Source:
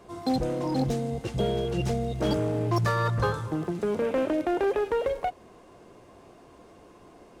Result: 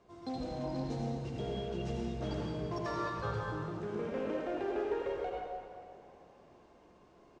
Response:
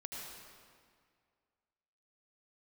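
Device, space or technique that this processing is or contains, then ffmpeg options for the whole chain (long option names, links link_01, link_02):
stairwell: -filter_complex "[0:a]lowpass=frequency=7100:width=0.5412,lowpass=frequency=7100:width=1.3066[link_01];[1:a]atrim=start_sample=2205[link_02];[link_01][link_02]afir=irnorm=-1:irlink=0,asplit=5[link_03][link_04][link_05][link_06][link_07];[link_04]adelay=389,afreqshift=42,volume=-22.5dB[link_08];[link_05]adelay=778,afreqshift=84,volume=-27.2dB[link_09];[link_06]adelay=1167,afreqshift=126,volume=-32dB[link_10];[link_07]adelay=1556,afreqshift=168,volume=-36.7dB[link_11];[link_03][link_08][link_09][link_10][link_11]amix=inputs=5:normalize=0,volume=-8dB"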